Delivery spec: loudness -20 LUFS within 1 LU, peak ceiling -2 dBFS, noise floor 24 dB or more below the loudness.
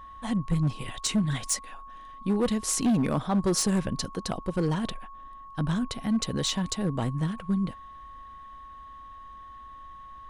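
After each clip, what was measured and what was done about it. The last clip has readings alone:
clipped 1.7%; flat tops at -19.5 dBFS; steady tone 1100 Hz; tone level -43 dBFS; loudness -28.0 LUFS; peak -19.5 dBFS; loudness target -20.0 LUFS
-> clip repair -19.5 dBFS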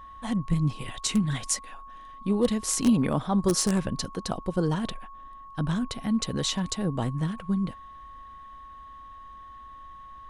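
clipped 0.0%; steady tone 1100 Hz; tone level -43 dBFS
-> notch 1100 Hz, Q 30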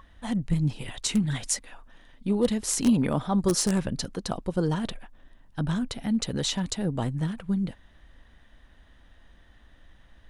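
steady tone none; loudness -27.5 LUFS; peak -10.5 dBFS; loudness target -20.0 LUFS
-> gain +7.5 dB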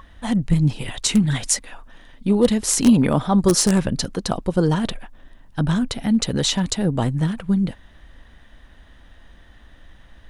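loudness -20.0 LUFS; peak -3.0 dBFS; noise floor -49 dBFS

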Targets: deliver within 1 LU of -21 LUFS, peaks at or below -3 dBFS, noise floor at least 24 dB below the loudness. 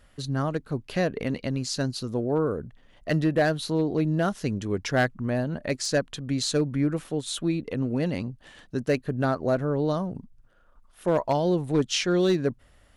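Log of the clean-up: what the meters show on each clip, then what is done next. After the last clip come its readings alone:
clipped 0.4%; flat tops at -15.5 dBFS; loudness -27.0 LUFS; peak -15.5 dBFS; loudness target -21.0 LUFS
-> clip repair -15.5 dBFS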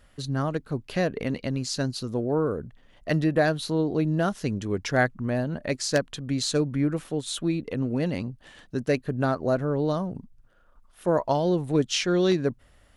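clipped 0.0%; loudness -26.5 LUFS; peak -6.5 dBFS; loudness target -21.0 LUFS
-> gain +5.5 dB; limiter -3 dBFS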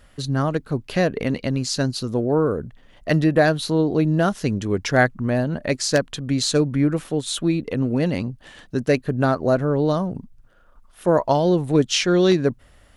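loudness -21.0 LUFS; peak -3.0 dBFS; noise floor -52 dBFS

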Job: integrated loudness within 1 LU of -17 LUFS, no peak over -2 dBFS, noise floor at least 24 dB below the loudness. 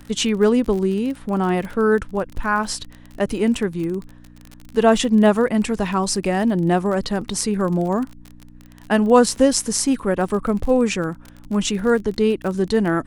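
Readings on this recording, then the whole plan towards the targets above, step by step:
ticks 32/s; hum 60 Hz; harmonics up to 300 Hz; hum level -46 dBFS; loudness -20.0 LUFS; peak -1.5 dBFS; loudness target -17.0 LUFS
-> de-click; de-hum 60 Hz, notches 5; gain +3 dB; limiter -2 dBFS

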